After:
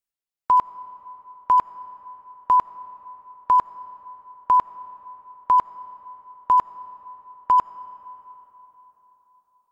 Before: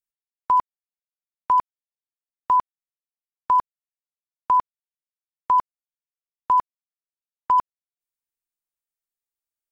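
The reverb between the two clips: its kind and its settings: digital reverb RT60 4.1 s, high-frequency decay 0.6×, pre-delay 35 ms, DRR 16.5 dB; gain +1.5 dB

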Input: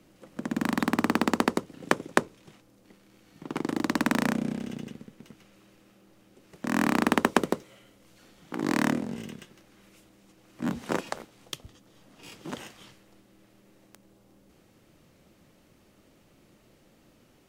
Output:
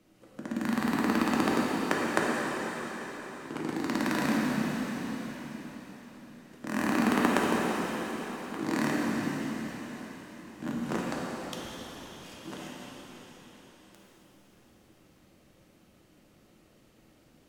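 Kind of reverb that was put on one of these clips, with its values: plate-style reverb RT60 4.9 s, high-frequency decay 1×, pre-delay 0 ms, DRR -4.5 dB; gain -6.5 dB

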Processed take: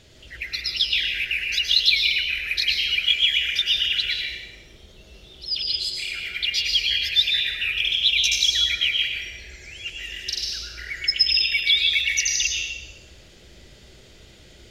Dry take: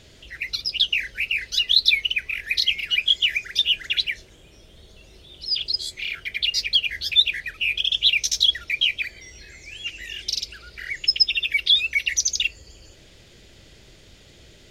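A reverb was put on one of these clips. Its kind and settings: plate-style reverb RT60 1.1 s, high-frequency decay 0.85×, pre-delay 95 ms, DRR -1 dB; gain -2.5 dB

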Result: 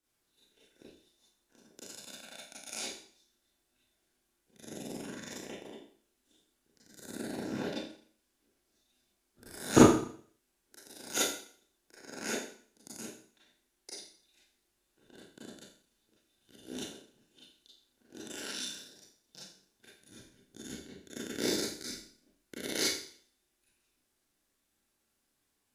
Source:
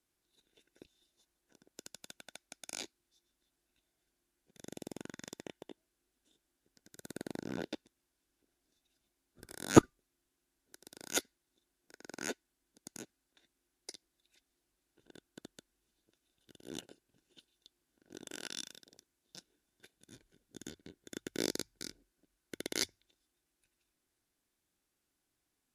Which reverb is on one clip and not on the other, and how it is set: Schroeder reverb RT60 0.52 s, combs from 28 ms, DRR -8 dB; gain -3.5 dB

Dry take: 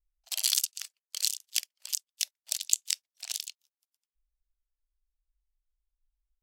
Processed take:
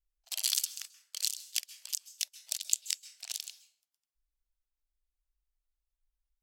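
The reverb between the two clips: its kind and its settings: plate-style reverb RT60 0.7 s, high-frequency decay 0.55×, pre-delay 0.12 s, DRR 15 dB; gain -3.5 dB

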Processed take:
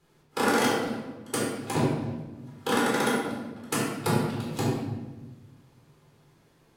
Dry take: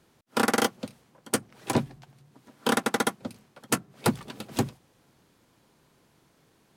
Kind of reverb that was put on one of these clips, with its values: shoebox room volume 740 m³, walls mixed, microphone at 4 m; gain -8 dB

